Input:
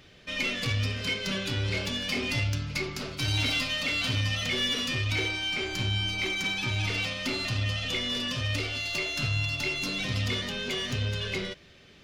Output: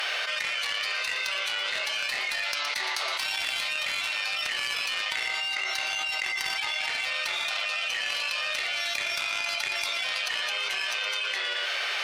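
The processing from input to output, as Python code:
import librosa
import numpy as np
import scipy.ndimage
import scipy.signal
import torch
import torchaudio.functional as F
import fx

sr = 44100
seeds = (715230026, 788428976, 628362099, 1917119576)

y = scipy.signal.sosfilt(scipy.signal.butter(4, 750.0, 'highpass', fs=sr, output='sos'), x)
y = y + 10.0 ** (-13.0 / 20.0) * np.pad(y, (int(117 * sr / 1000.0), 0))[:len(y)]
y = fx.formant_shift(y, sr, semitones=-2)
y = fx.cheby_harmonics(y, sr, harmonics=(3,), levels_db=(-13,), full_scale_db=-16.0)
y = fx.env_flatten(y, sr, amount_pct=100)
y = y * librosa.db_to_amplitude(1.5)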